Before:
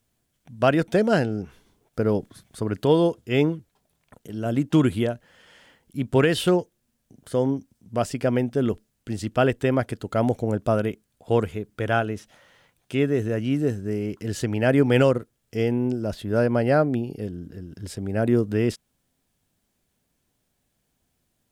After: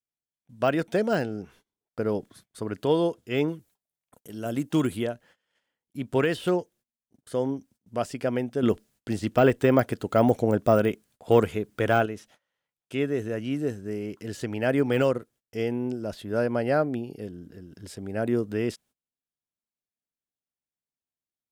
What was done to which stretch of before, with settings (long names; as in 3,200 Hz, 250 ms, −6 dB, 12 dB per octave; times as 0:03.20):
0:03.48–0:04.97: high-shelf EQ 6,200 Hz +11 dB
0:08.63–0:12.06: clip gain +7 dB
whole clip: noise gate −49 dBFS, range −23 dB; de-essing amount 75%; low-shelf EQ 140 Hz −9.5 dB; level −3 dB